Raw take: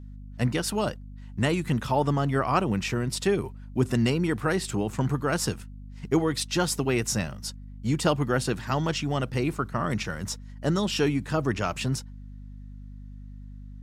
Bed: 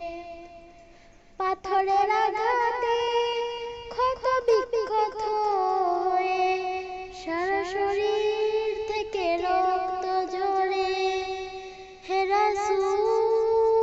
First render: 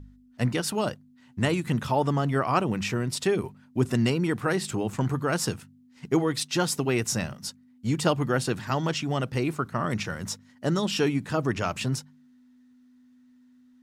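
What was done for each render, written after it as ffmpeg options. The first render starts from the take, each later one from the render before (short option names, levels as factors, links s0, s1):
-af "bandreject=f=50:t=h:w=4,bandreject=f=100:t=h:w=4,bandreject=f=150:t=h:w=4,bandreject=f=200:t=h:w=4"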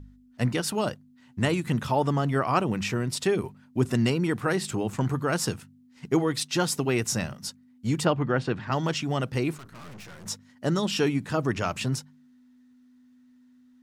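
-filter_complex "[0:a]asplit=3[s0][s1][s2];[s0]afade=t=out:st=8.04:d=0.02[s3];[s1]lowpass=3000,afade=t=in:st=8.04:d=0.02,afade=t=out:st=8.71:d=0.02[s4];[s2]afade=t=in:st=8.71:d=0.02[s5];[s3][s4][s5]amix=inputs=3:normalize=0,asettb=1/sr,asplit=3[s6][s7][s8];[s6]atrim=end=9.584[s9];[s7]atrim=start=9.58:end=10.26,asetpts=PTS-STARTPTS,afade=t=in:d=0.004:c=qsin,afade=t=out:st=0.676:d=0.004:c=qsin,aeval=exprs='(tanh(141*val(0)+0.7)-tanh(0.7))/141':c=same[s10];[s8]atrim=start=10.256[s11];[s9][s10]acrossfade=d=0.004:c1=hsin:c2=qsin[s12];[s12][s11]acrossfade=d=0.004:c1=qsin:c2=hsin"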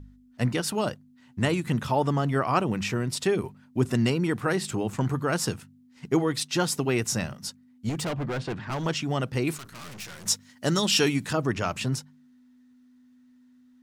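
-filter_complex "[0:a]asettb=1/sr,asplit=3[s0][s1][s2];[s0]atrim=end=7.894[s3];[s1]atrim=start=7.89:end=8.86,asetpts=PTS-STARTPTS,afade=t=in:d=0.004:c=qsin,afade=t=out:st=0.966:d=0.004:c=qsin,asoftclip=type=hard:threshold=0.0447[s4];[s2]atrim=start=8.856[s5];[s3][s4]acrossfade=d=0.004:c1=hsin:c2=qsin[s6];[s6][s5]acrossfade=d=0.004:c1=qsin:c2=hsin,asettb=1/sr,asplit=3[s7][s8][s9];[s7]atrim=end=9.474[s10];[s8]atrim=start=9.47:end=11.33,asetpts=PTS-STARTPTS,afade=t=in:d=0.004:c=qsin,afade=t=out:st=1.856:d=0.004:c=qsin,highshelf=f=2200:g=10.5[s11];[s9]atrim=start=11.326[s12];[s10][s11]acrossfade=d=0.004:c1=hsin:c2=qsin[s13];[s13][s12]acrossfade=d=0.004:c1=qsin:c2=hsin"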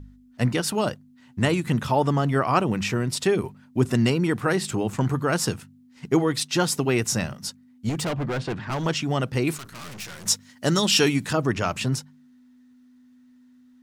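-af "volume=1.41"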